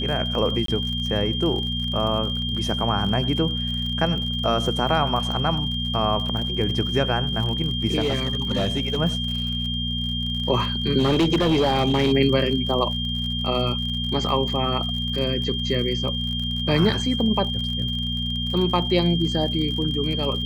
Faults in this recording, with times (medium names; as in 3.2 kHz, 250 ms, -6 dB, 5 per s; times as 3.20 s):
crackle 59 per s -30 dBFS
hum 60 Hz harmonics 4 -28 dBFS
whine 3.2 kHz -27 dBFS
0.66–0.68 s: dropout 23 ms
7.99–9.00 s: clipped -18 dBFS
10.98–12.13 s: clipped -15 dBFS